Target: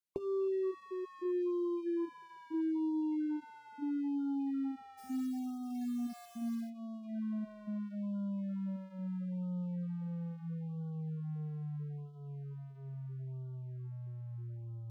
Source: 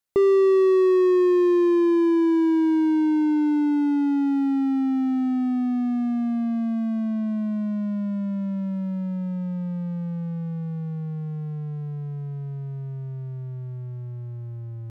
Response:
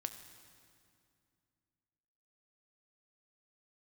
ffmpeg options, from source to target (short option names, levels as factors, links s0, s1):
-filter_complex "[0:a]acrossover=split=1100|2300[s0][s1][s2];[s0]acompressor=threshold=0.0708:ratio=4[s3];[s1]acompressor=threshold=0.00282:ratio=4[s4];[s2]acompressor=threshold=0.00112:ratio=4[s5];[s3][s4][s5]amix=inputs=3:normalize=0,flanger=delay=6.1:depth=5.2:regen=-62:speed=0.36:shape=sinusoidal,asplit=3[s6][s7][s8];[s6]afade=t=out:st=4.97:d=0.02[s9];[s7]acrusher=bits=6:mode=log:mix=0:aa=0.000001,afade=t=in:st=4.97:d=0.02,afade=t=out:st=6.69:d=0.02[s10];[s8]afade=t=in:st=6.69:d=0.02[s11];[s9][s10][s11]amix=inputs=3:normalize=0,asplit=2[s12][s13];[1:a]atrim=start_sample=2205[s14];[s13][s14]afir=irnorm=-1:irlink=0,volume=0.266[s15];[s12][s15]amix=inputs=2:normalize=0,afftfilt=real='re*(1-between(b*sr/1024,260*pow(2100/260,0.5+0.5*sin(2*PI*0.76*pts/sr))/1.41,260*pow(2100/260,0.5+0.5*sin(2*PI*0.76*pts/sr))*1.41))':imag='im*(1-between(b*sr/1024,260*pow(2100/260,0.5+0.5*sin(2*PI*0.76*pts/sr))/1.41,260*pow(2100/260,0.5+0.5*sin(2*PI*0.76*pts/sr))*1.41))':win_size=1024:overlap=0.75,volume=0.398"